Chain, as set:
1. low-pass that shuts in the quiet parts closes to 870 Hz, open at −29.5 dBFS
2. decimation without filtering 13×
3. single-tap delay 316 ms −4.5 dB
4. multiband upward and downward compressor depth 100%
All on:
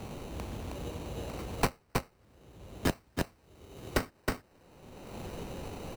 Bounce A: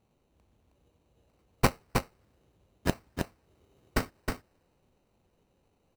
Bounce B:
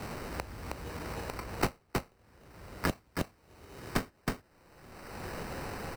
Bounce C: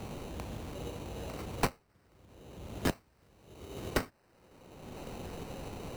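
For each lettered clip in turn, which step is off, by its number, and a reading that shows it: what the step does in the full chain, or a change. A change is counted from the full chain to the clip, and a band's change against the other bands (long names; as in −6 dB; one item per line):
4, change in crest factor +3.5 dB
1, 2 kHz band +1.5 dB
3, change in momentary loudness spread −2 LU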